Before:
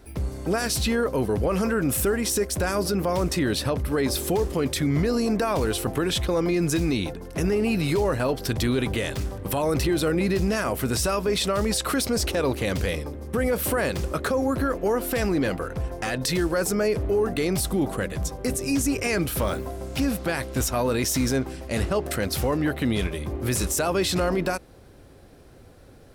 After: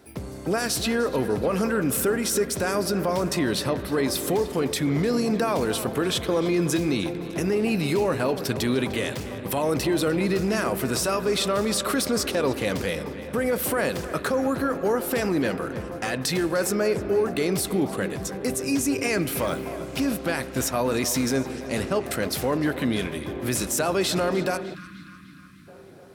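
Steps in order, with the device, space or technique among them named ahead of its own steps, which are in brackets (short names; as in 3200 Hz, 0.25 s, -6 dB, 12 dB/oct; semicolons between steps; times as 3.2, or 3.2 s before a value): HPF 130 Hz 12 dB/oct; dub delay into a spring reverb (darkening echo 0.302 s, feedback 66%, low-pass 4400 Hz, level -14 dB; spring tank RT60 3.5 s, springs 37/46 ms, chirp 50 ms, DRR 13.5 dB); spectral gain 24.75–25.67, 330–1000 Hz -29 dB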